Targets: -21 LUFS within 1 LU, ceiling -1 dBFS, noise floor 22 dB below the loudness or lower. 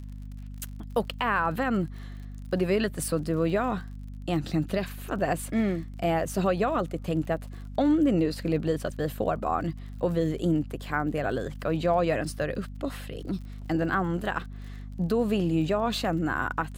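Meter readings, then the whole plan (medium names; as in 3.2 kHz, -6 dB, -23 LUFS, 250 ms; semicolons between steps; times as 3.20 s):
tick rate 46 per s; hum 50 Hz; highest harmonic 250 Hz; hum level -37 dBFS; loudness -28.0 LUFS; peak level -13.5 dBFS; loudness target -21.0 LUFS
-> de-click; hum notches 50/100/150/200/250 Hz; trim +7 dB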